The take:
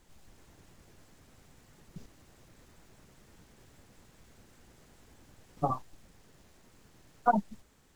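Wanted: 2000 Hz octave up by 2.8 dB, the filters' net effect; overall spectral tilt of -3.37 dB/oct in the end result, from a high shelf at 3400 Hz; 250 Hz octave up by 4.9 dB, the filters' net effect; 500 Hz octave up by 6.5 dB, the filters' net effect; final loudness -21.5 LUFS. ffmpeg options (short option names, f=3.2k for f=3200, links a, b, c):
-af "equalizer=f=250:t=o:g=4.5,equalizer=f=500:t=o:g=8.5,equalizer=f=2k:t=o:g=5,highshelf=f=3.4k:g=-5,volume=6dB"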